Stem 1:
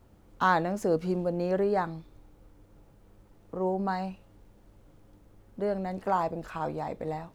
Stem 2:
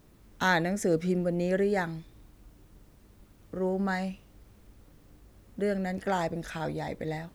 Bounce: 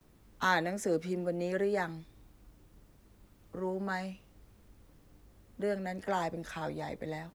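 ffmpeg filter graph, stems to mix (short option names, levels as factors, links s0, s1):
-filter_complex "[0:a]highpass=780,volume=0.316[s0];[1:a]acrossover=split=220|3000[s1][s2][s3];[s1]acompressor=threshold=0.00891:ratio=6[s4];[s4][s2][s3]amix=inputs=3:normalize=0,volume=-1,adelay=10,volume=0.631[s5];[s0][s5]amix=inputs=2:normalize=0"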